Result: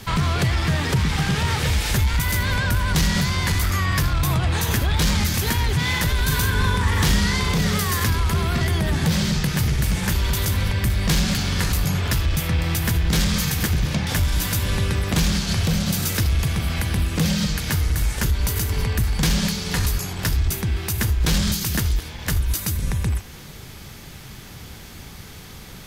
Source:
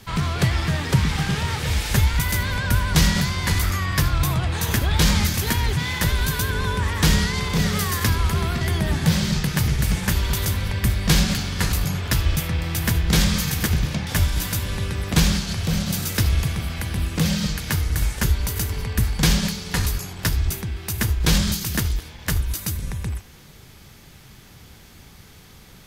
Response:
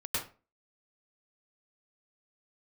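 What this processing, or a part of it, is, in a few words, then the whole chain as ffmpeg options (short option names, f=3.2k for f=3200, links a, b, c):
soft clipper into limiter: -filter_complex "[0:a]asoftclip=type=tanh:threshold=-12dB,alimiter=limit=-20dB:level=0:latency=1:release=302,asettb=1/sr,asplit=3[a][b][c];[a]atrim=end=6.234[d];[b]atrim=start=6.23:end=7.52,asetpts=PTS-STARTPTS,afade=t=in:d=0.004:c=qsin,afade=t=out:st=1.286:d=0.004:c=qsin,asplit=2[e][f];[f]adelay=40,volume=-5dB[g];[e][g]amix=inputs=2:normalize=0,atrim=end_sample=56889[h];[c]atrim=start=7.516[i];[d][h]acrossfade=d=0.004:c1=hsin:c2=qsin[j];[j][i]acrossfade=d=0.004:c1=qsin:c2=hsin,volume=7dB"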